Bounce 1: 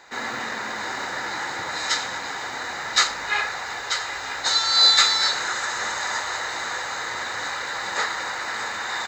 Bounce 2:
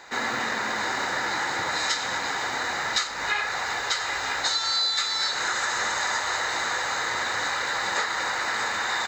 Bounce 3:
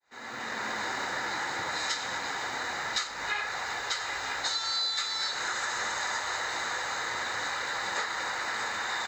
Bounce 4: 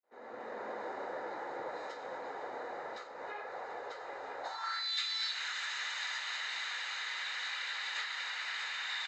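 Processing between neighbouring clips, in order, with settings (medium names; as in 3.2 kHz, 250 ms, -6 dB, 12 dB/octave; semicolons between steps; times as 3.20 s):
compression 12:1, threshold -25 dBFS, peak gain reduction 13.5 dB; trim +3 dB
fade-in on the opening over 0.65 s; trim -5.5 dB
bit crusher 12-bit; saturation -20 dBFS, distortion -26 dB; band-pass sweep 510 Hz -> 2.9 kHz, 4.39–4.93 s; trim +3 dB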